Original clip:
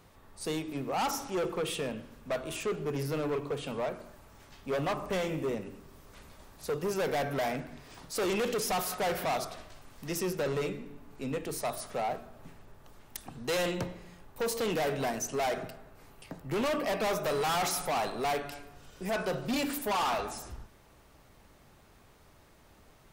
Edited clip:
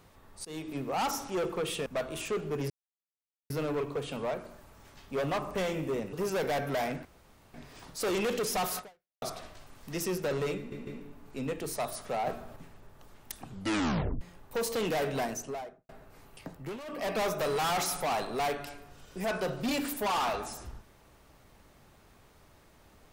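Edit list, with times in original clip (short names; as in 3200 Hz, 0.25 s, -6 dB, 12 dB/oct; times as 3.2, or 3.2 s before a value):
0.45–0.79 fade in equal-power, from -23.5 dB
1.86–2.21 cut
3.05 insert silence 0.80 s
5.68–6.77 cut
7.69 insert room tone 0.49 s
8.94–9.37 fade out exponential
10.72 stutter 0.15 s, 3 plays
12.12–12.41 gain +5 dB
13.3 tape stop 0.76 s
15.06–15.74 studio fade out
16.36–16.98 dip -14.5 dB, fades 0.28 s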